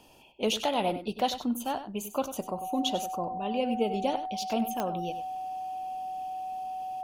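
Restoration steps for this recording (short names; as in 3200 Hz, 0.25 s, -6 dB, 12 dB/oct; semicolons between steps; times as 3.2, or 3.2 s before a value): de-click; notch 750 Hz, Q 30; inverse comb 97 ms -11.5 dB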